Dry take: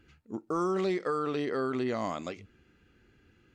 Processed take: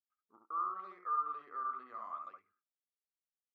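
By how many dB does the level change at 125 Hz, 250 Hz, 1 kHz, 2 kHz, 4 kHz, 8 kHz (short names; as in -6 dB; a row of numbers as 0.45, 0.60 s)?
under -35 dB, -32.0 dB, -1.0 dB, -16.0 dB, under -25 dB, under -25 dB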